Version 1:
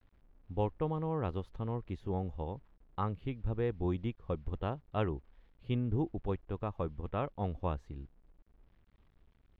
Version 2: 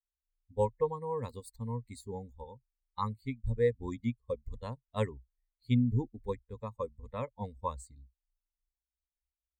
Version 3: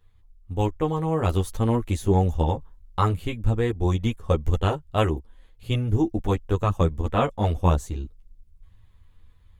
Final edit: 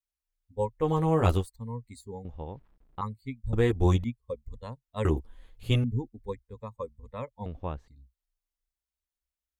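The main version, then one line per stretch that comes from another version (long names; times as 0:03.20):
2
0:00.84–0:01.40: punch in from 3, crossfade 0.16 s
0:02.25–0:03.01: punch in from 1
0:03.53–0:04.04: punch in from 3
0:05.05–0:05.84: punch in from 3
0:07.46–0:07.88: punch in from 1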